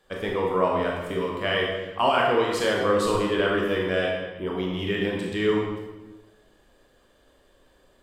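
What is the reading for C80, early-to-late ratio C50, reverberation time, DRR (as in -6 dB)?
3.5 dB, 1.0 dB, 1.2 s, -2.0 dB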